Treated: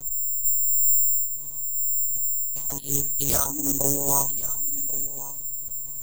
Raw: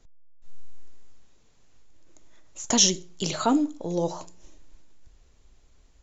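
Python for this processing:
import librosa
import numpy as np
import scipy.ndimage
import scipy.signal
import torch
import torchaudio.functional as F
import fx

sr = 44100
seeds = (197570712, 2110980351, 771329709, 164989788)

y = fx.law_mismatch(x, sr, coded='mu')
y = fx.over_compress(y, sr, threshold_db=-31.0, ratio=-1.0)
y = fx.lpc_monotone(y, sr, seeds[0], pitch_hz=140.0, order=16)
y = fx.small_body(y, sr, hz=(980.0, 2300.0), ring_ms=45, db=8)
y = (np.kron(y[::6], np.eye(6)[0]) * 6)[:len(y)]
y = fx.peak_eq(y, sr, hz=2300.0, db=-10.0, octaves=2.2)
y = y + 10.0 ** (-16.5 / 20.0) * np.pad(y, (int(1089 * sr / 1000.0), 0))[:len(y)]
y = fx.doppler_dist(y, sr, depth_ms=0.22)
y = F.gain(torch.from_numpy(y), 3.5).numpy()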